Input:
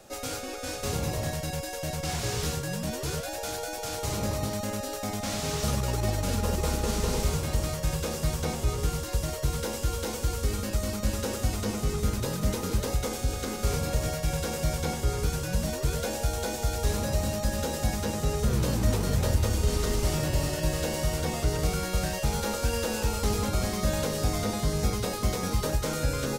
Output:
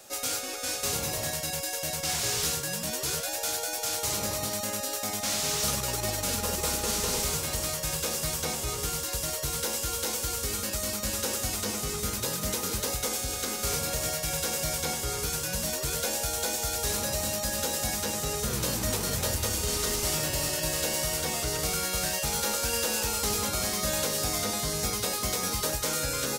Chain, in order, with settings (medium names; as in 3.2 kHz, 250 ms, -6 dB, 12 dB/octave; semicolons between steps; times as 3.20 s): tilt EQ +2.5 dB/octave; 19.55–22.31 s: crackle 190 per s -49 dBFS